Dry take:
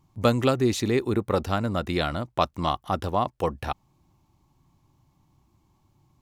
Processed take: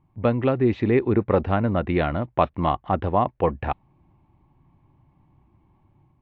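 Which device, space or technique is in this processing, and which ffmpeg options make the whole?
action camera in a waterproof case: -af "lowpass=frequency=2400:width=0.5412,lowpass=frequency=2400:width=1.3066,equalizer=frequency=1300:width_type=o:width=0.46:gain=-5,dynaudnorm=framelen=430:gausssize=3:maxgain=5dB" -ar 22050 -c:a aac -b:a 64k

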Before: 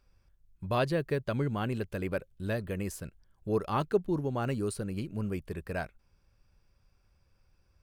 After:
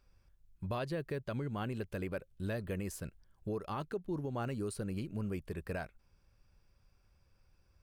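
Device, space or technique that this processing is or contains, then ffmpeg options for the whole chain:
stacked limiters: -af "alimiter=limit=-21.5dB:level=0:latency=1:release=434,alimiter=level_in=3.5dB:limit=-24dB:level=0:latency=1:release=202,volume=-3.5dB,volume=-1dB"

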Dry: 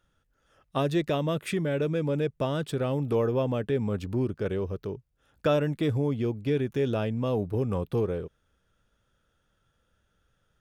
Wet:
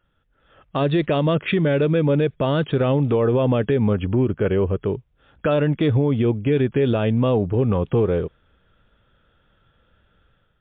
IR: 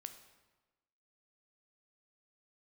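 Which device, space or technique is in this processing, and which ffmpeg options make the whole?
low-bitrate web radio: -af "dynaudnorm=framelen=150:gausssize=5:maxgain=8dB,alimiter=limit=-14.5dB:level=0:latency=1:release=75,volume=3.5dB" -ar 8000 -c:a libmp3lame -b:a 40k

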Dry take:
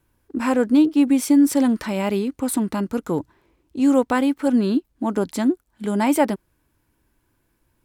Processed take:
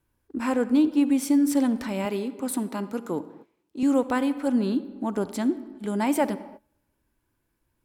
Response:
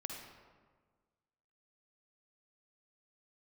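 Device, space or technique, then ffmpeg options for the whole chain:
keyed gated reverb: -filter_complex "[0:a]asplit=3[link_01][link_02][link_03];[1:a]atrim=start_sample=2205[link_04];[link_02][link_04]afir=irnorm=-1:irlink=0[link_05];[link_03]apad=whole_len=345844[link_06];[link_05][link_06]sidechaingate=range=-25dB:threshold=-51dB:ratio=16:detection=peak,volume=-7dB[link_07];[link_01][link_07]amix=inputs=2:normalize=0,asettb=1/sr,asplit=3[link_08][link_09][link_10];[link_08]atrim=end=2.054[link_11];[link_09]atrim=start=2.05:end=3.83,asetpts=PTS-STARTPTS,afade=type=in:duration=0.004:curve=qsin,afade=type=out:start_time=1.776:duration=0.004:curve=qsin,highpass=190[link_12];[link_10]atrim=start=3.826[link_13];[link_11][link_12]acrossfade=duration=0.004:curve1=hsin:curve2=qsin[link_14];[link_14][link_13]acrossfade=duration=0.004:curve1=qsin:curve2=hsin,volume=-7.5dB"

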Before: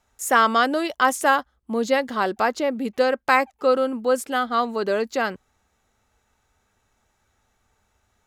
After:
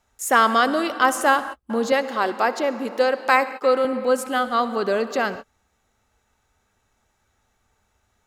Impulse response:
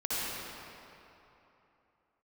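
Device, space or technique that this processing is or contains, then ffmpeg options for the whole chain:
keyed gated reverb: -filter_complex "[0:a]asplit=3[link_01][link_02][link_03];[1:a]atrim=start_sample=2205[link_04];[link_02][link_04]afir=irnorm=-1:irlink=0[link_05];[link_03]apad=whole_len=364637[link_06];[link_05][link_06]sidechaingate=range=-59dB:threshold=-37dB:ratio=16:detection=peak,volume=-19dB[link_07];[link_01][link_07]amix=inputs=2:normalize=0,asettb=1/sr,asplit=3[link_08][link_09][link_10];[link_08]atrim=end=1.924[link_11];[link_09]atrim=start=1.92:end=3.85,asetpts=PTS-STARTPTS,afade=type=in:duration=0.004:curve=qsin,afade=type=out:start_time=1.926:duration=0.004:curve=qsin,highpass=260[link_12];[link_10]atrim=start=3.846[link_13];[link_11][link_12]acrossfade=duration=0.004:curve1=hsin:curve2=qsin[link_14];[link_14][link_13]acrossfade=duration=0.004:curve1=qsin:curve2=hsin"

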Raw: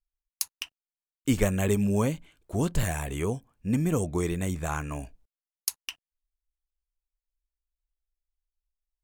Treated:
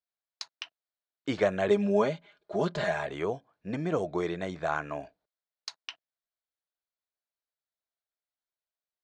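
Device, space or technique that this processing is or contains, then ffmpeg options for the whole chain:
kitchen radio: -filter_complex "[0:a]asettb=1/sr,asplit=3[link_01][link_02][link_03];[link_01]atrim=end=1.704[link_04];[link_02]atrim=start=1.7:end=3.07,asetpts=PTS-STARTPTS,afade=type=in:duration=0.004:curve=qsin,afade=type=out:start_time=1.366:duration=0.004:curve=qsin,aecho=1:1:4.9:0.76,atrim=end_sample=60417[link_05];[link_03]atrim=start=3.066[link_06];[link_04][link_05]acrossfade=duration=0.004:curve1=hsin:curve2=qsin[link_07];[link_07][link_06]acrossfade=duration=0.004:curve1=qsin:curve2=hsin,highpass=230,equalizer=frequency=240:width_type=q:width=4:gain=-9,equalizer=frequency=650:width_type=q:width=4:gain=8,equalizer=frequency=1500:width_type=q:width=4:gain=4,equalizer=frequency=2700:width_type=q:width=4:gain=-6,equalizer=frequency=4100:width_type=q:width=4:gain=4,lowpass=frequency=4600:width=0.5412,lowpass=frequency=4600:width=1.3066"

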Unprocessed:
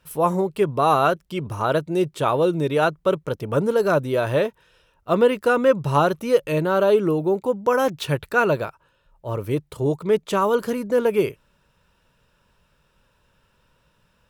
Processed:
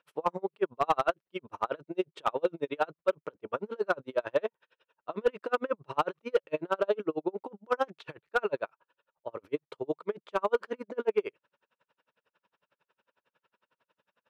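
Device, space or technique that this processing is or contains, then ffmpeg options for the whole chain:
helicopter radio: -af "highpass=370,lowpass=2900,aeval=exprs='val(0)*pow(10,-39*(0.5-0.5*cos(2*PI*11*n/s))/20)':channel_layout=same,asoftclip=type=hard:threshold=-15.5dB,volume=-1.5dB"

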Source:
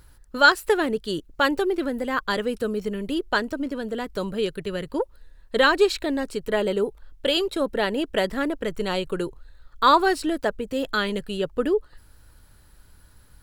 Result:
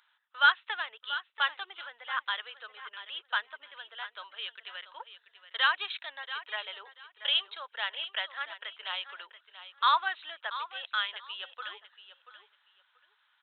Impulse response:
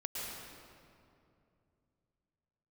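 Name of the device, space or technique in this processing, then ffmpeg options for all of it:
musical greeting card: -af "aresample=8000,aresample=44100,highpass=frequency=900:width=0.5412,highpass=frequency=900:width=1.3066,lowshelf=frequency=450:gain=-10,equalizer=frequency=3500:width_type=o:width=0.55:gain=6,aecho=1:1:684|1368:0.224|0.0448,volume=-5dB"

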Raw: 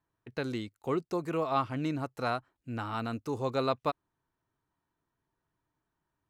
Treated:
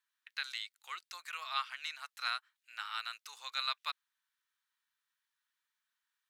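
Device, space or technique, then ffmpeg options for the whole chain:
headphones lying on a table: -af "highpass=frequency=1500:width=0.5412,highpass=frequency=1500:width=1.3066,equalizer=frequency=3700:width_type=o:width=0.57:gain=5,volume=3dB"

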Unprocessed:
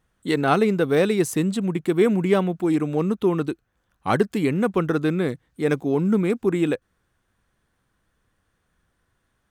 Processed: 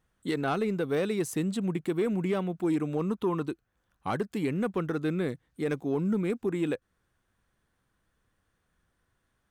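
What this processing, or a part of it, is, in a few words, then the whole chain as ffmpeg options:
soft clipper into limiter: -filter_complex "[0:a]asoftclip=type=tanh:threshold=-9.5dB,alimiter=limit=-16dB:level=0:latency=1:release=406,asettb=1/sr,asplit=3[link_01][link_02][link_03];[link_01]atrim=end=3.014[link_04];[link_02]atrim=start=3.01:end=3.5,asetpts=PTS-STARTPTS,afade=type=in:duration=0.004:curve=qsin,afade=type=out:start_time=0.486:duration=0.004:curve=qsin,equalizer=frequency=1000:width=4.4:gain=8.5[link_05];[link_03]atrim=start=3.496[link_06];[link_04][link_05]acrossfade=duration=0.004:curve1=hsin:curve2=qsin[link_07];[link_07][link_06]acrossfade=duration=0.004:curve1=qsin:curve2=hsin,volume=-4.5dB"

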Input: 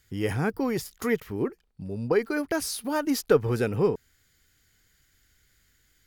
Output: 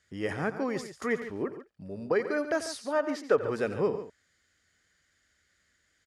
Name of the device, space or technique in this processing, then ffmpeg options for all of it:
car door speaker: -filter_complex "[0:a]asettb=1/sr,asplit=3[link_01][link_02][link_03];[link_01]atrim=end=2.784[link_04];[link_02]atrim=start=2.78:end=3.38,asetpts=PTS-STARTPTS,afade=type=in:duration=0.004:curve=qsin,afade=type=out:start_time=0.596:duration=0.004:curve=qsin,bass=frequency=250:gain=-8,treble=frequency=4000:gain=-9[link_05];[link_03]atrim=start=3.376[link_06];[link_04][link_05]acrossfade=duration=0.004:curve1=hsin:curve2=qsin[link_07];[link_07][link_06]acrossfade=duration=0.004:curve1=qsin:curve2=hsin,highpass=84,equalizer=frequency=120:width_type=q:width=4:gain=-9,equalizer=frequency=600:width_type=q:width=4:gain=9,equalizer=frequency=1200:width_type=q:width=4:gain=5,equalizer=frequency=1800:width_type=q:width=4:gain=6,lowpass=frequency=8900:width=0.5412,lowpass=frequency=8900:width=1.3066,aecho=1:1:88|142:0.2|0.237,volume=-5.5dB"

